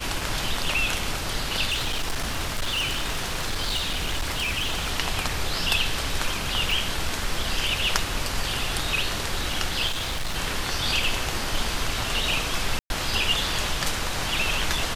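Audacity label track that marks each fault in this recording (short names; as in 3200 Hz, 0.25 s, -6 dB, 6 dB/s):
1.690000	4.910000	clipped -22 dBFS
6.710000	6.710000	gap 3.3 ms
9.870000	10.360000	clipped -24 dBFS
12.790000	12.900000	gap 0.111 s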